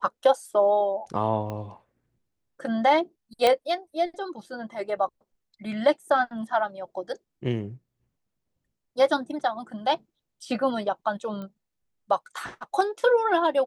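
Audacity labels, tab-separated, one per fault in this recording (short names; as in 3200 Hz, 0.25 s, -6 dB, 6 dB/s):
1.500000	1.500000	pop -21 dBFS
3.470000	3.470000	pop -8 dBFS
11.420000	11.420000	pop -27 dBFS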